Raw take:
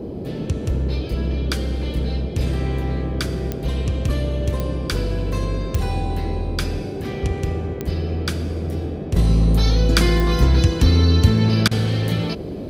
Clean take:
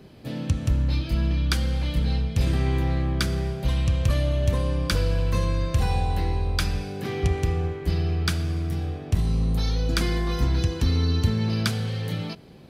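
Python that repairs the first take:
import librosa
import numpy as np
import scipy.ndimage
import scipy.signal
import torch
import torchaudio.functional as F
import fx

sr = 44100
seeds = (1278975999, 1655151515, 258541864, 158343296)

y = fx.fix_declick_ar(x, sr, threshold=10.0)
y = fx.fix_interpolate(y, sr, at_s=(11.68,), length_ms=31.0)
y = fx.noise_reduce(y, sr, print_start_s=0.0, print_end_s=0.5, reduce_db=6.0)
y = fx.fix_level(y, sr, at_s=9.16, step_db=-7.5)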